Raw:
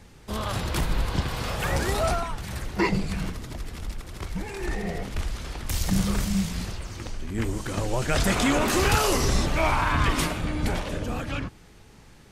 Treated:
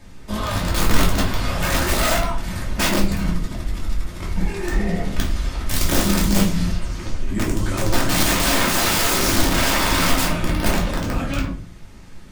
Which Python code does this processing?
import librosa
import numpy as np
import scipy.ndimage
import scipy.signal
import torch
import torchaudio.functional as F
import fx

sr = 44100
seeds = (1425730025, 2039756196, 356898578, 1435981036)

y = (np.mod(10.0 ** (18.5 / 20.0) * x + 1.0, 2.0) - 1.0) / 10.0 ** (18.5 / 20.0)
y = fx.room_shoebox(y, sr, seeds[0], volume_m3=240.0, walls='furnished', distance_m=2.7)